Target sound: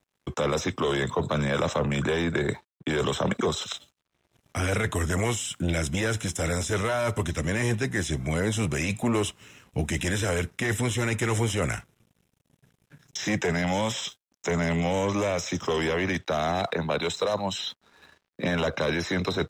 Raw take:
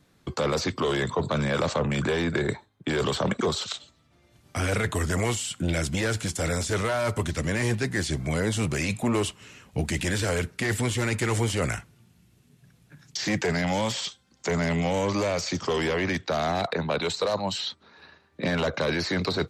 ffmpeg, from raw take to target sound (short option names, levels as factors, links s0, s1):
-af "asuperstop=centerf=4500:order=12:qfactor=5.3,aeval=exprs='sgn(val(0))*max(abs(val(0))-0.00126,0)':c=same"